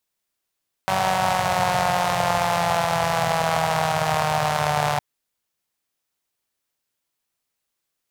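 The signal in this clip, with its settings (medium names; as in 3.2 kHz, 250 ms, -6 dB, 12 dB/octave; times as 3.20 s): four-cylinder engine model, changing speed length 4.11 s, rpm 5700, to 4400, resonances 130/730 Hz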